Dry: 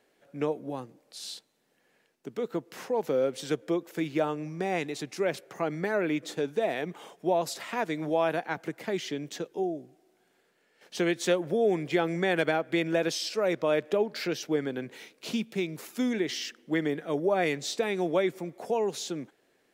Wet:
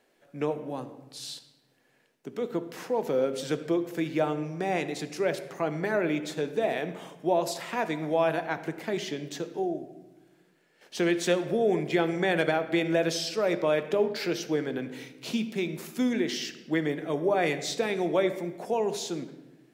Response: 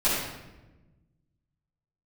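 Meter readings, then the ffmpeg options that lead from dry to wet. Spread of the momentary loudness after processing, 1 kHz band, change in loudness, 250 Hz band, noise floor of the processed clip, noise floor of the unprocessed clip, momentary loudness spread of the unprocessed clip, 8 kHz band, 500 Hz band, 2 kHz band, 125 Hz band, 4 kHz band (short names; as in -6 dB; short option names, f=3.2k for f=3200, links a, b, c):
11 LU, +1.0 dB, +1.0 dB, +1.5 dB, -66 dBFS, -70 dBFS, 12 LU, +1.0 dB, +1.0 dB, +1.0 dB, +2.0 dB, +1.0 dB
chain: -filter_complex "[0:a]asplit=2[a][b];[1:a]atrim=start_sample=2205[c];[b][c]afir=irnorm=-1:irlink=0,volume=-22.5dB[d];[a][d]amix=inputs=2:normalize=0"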